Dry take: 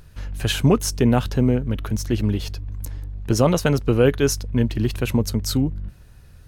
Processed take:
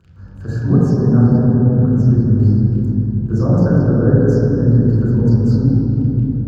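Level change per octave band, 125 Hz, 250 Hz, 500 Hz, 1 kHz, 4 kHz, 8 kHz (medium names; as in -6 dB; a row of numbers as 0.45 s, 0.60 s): +10.5 dB, +8.0 dB, +2.0 dB, -2.5 dB, under -15 dB, under -15 dB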